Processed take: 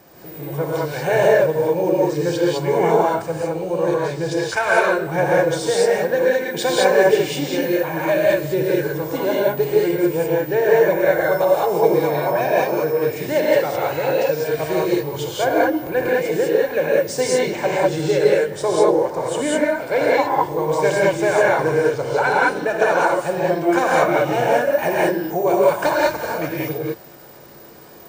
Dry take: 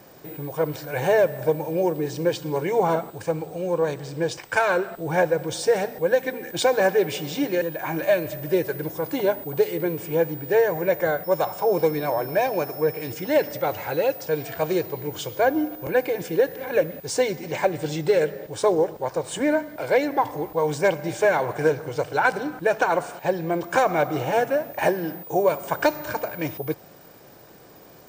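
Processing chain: gated-style reverb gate 230 ms rising, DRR -5.5 dB; trim -1 dB

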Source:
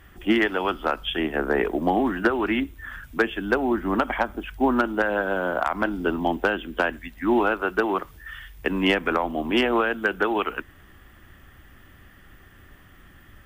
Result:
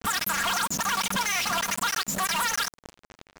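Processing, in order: doubling 17 ms -3.5 dB; compression 4:1, threshold -33 dBFS, peak gain reduction 16.5 dB; companded quantiser 2-bit; level-controlled noise filter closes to 560 Hz, open at -29 dBFS; wide varispeed 3.96×; trim +1.5 dB

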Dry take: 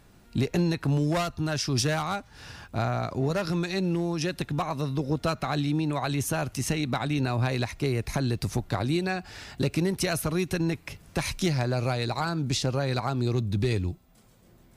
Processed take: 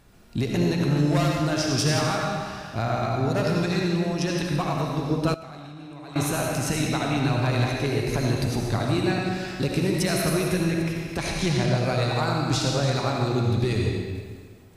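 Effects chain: chunks repeated in reverse 172 ms, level -9.5 dB; 11.17–11.75 s: low-pass 9.1 kHz 12 dB/octave; algorithmic reverb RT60 1.6 s, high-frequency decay 0.9×, pre-delay 35 ms, DRR -1 dB; 5.34–6.16 s: level held to a coarse grid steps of 20 dB

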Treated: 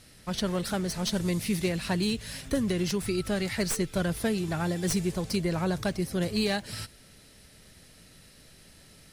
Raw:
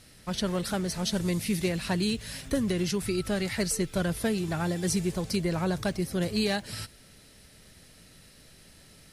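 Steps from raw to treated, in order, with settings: tracing distortion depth 0.028 ms

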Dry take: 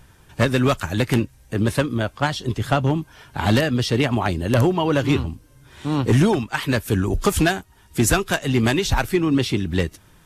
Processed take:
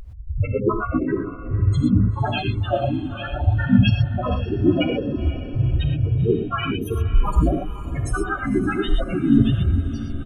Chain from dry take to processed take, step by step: recorder AGC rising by 46 dB/s; reverb removal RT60 0.55 s; peaking EQ 2.7 kHz +5.5 dB 1.1 oct; compression 6:1, threshold -20 dBFS, peak gain reduction 8 dB; phaser 0.53 Hz, delay 3.1 ms, feedback 62%; loudest bins only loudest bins 1; echo that smears into a reverb 503 ms, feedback 55%, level -13 dB; harmony voices -12 st -9 dB, -4 st -1 dB, -3 st -5 dB; reverberation, pre-delay 3 ms, DRR 4 dB; trim +6 dB

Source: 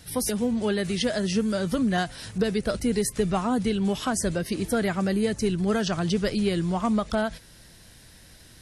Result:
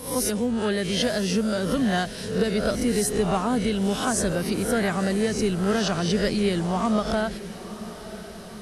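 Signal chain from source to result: reverse spectral sustain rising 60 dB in 0.52 s; echo that smears into a reverb 974 ms, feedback 60%, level -15 dB

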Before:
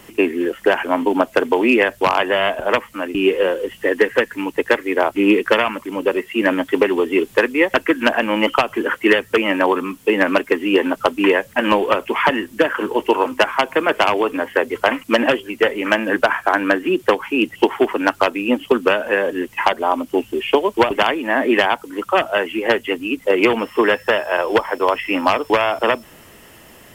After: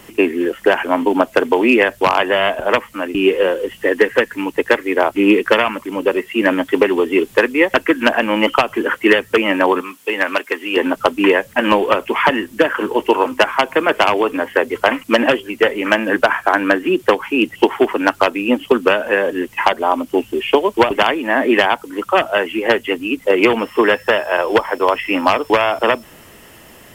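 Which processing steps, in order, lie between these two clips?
9.81–10.77 s: high-pass 940 Hz 6 dB/octave; trim +2 dB

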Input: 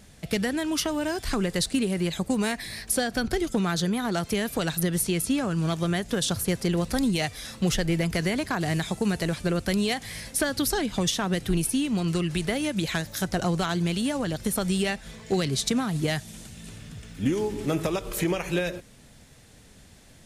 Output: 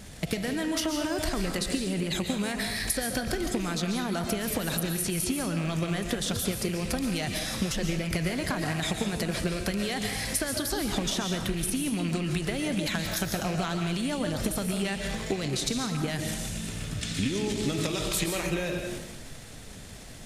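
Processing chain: rattle on loud lows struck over -25 dBFS, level -25 dBFS; 17.01–18.26 s: graphic EQ 125/250/2000/4000/8000 Hz +4/+4/+4/+12/+9 dB; transient shaper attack +6 dB, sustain +10 dB; compression 6:1, threshold -33 dBFS, peak gain reduction 20.5 dB; on a send: reverberation RT60 0.75 s, pre-delay 95 ms, DRR 4 dB; on the sum: trim +5 dB

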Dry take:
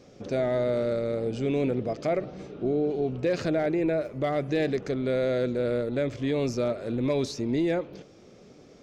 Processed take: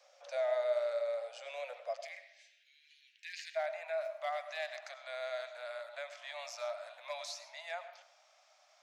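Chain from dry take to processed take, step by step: steep high-pass 550 Hz 96 dB/octave, from 1.98 s 1.7 kHz, from 3.55 s 620 Hz; reverberation RT60 0.80 s, pre-delay 60 ms, DRR 11 dB; trim -5.5 dB

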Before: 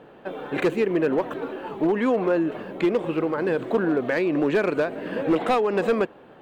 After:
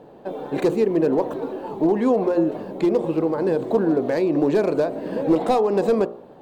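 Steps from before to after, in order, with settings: high-order bell 2 kHz -10.5 dB; de-hum 59.13 Hz, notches 24; trim +3.5 dB

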